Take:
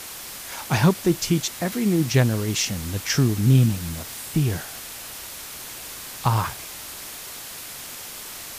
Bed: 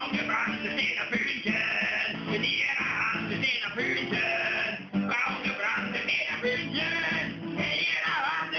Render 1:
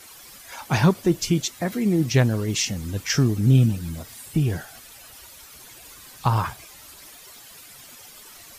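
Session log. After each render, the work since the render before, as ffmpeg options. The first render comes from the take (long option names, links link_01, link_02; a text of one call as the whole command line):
ffmpeg -i in.wav -af "afftdn=noise_reduction=12:noise_floor=-37" out.wav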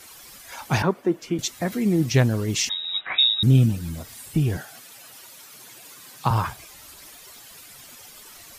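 ffmpeg -i in.wav -filter_complex "[0:a]asettb=1/sr,asplit=3[link_01][link_02][link_03];[link_01]atrim=end=0.824[link_04];[link_02]atrim=start=0.82:end=1.39,asetpts=PTS-STARTPTS,afade=type=in:duration=0.004:curve=qsin,afade=type=out:start_time=0.566:duration=0.004:curve=qsin,acrossover=split=210 2200:gain=0.0708 1 0.158[link_05][link_06][link_07];[link_05][link_06][link_07]amix=inputs=3:normalize=0[link_08];[link_03]atrim=start=1.386[link_09];[link_04][link_08]acrossfade=duration=0.004:curve1=hsin:curve2=qsin[link_10];[link_10][link_09]acrossfade=duration=0.004:curve1=qsin:curve2=hsin,asettb=1/sr,asplit=3[link_11][link_12][link_13];[link_11]atrim=end=2.694[link_14];[link_12]atrim=start=2.69:end=3.43,asetpts=PTS-STARTPTS,afade=type=in:duration=0.004:curve=qsin,afade=type=out:start_time=0.736:duration=0.004:curve=qsin,lowpass=frequency=3300:width_type=q:width=0.5098,lowpass=frequency=3300:width_type=q:width=0.6013,lowpass=frequency=3300:width_type=q:width=0.9,lowpass=frequency=3300:width_type=q:width=2.563,afreqshift=-3900[link_15];[link_13]atrim=start=3.426[link_16];[link_14][link_15]acrossfade=duration=0.004:curve1=hsin:curve2=qsin[link_17];[link_17][link_16]acrossfade=duration=0.004:curve1=qsin:curve2=hsin,asettb=1/sr,asplit=3[link_18][link_19][link_20];[link_18]atrim=end=4.574[link_21];[link_19]atrim=start=4.57:end=6.31,asetpts=PTS-STARTPTS,afade=type=in:duration=0.004:curve=qsin,afade=type=out:start_time=1.736:duration=0.004:curve=qsin,highpass=frequency=120:width=0.5412,highpass=frequency=120:width=1.3066[link_22];[link_20]atrim=start=6.306[link_23];[link_21][link_22]acrossfade=duration=0.004:curve1=hsin:curve2=qsin[link_24];[link_24][link_23]acrossfade=duration=0.004:curve1=qsin:curve2=hsin" out.wav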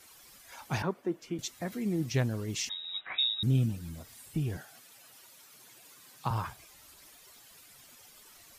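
ffmpeg -i in.wav -af "volume=-10.5dB" out.wav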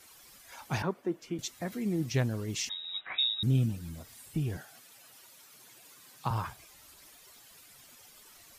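ffmpeg -i in.wav -af anull out.wav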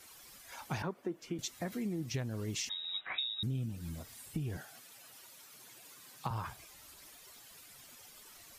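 ffmpeg -i in.wav -af "acompressor=threshold=-34dB:ratio=6" out.wav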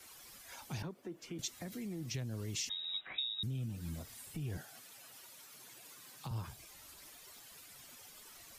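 ffmpeg -i in.wav -filter_complex "[0:a]acrossover=split=120|540|2700[link_01][link_02][link_03][link_04];[link_02]alimiter=level_in=15dB:limit=-24dB:level=0:latency=1,volume=-15dB[link_05];[link_03]acompressor=threshold=-54dB:ratio=6[link_06];[link_01][link_05][link_06][link_04]amix=inputs=4:normalize=0" out.wav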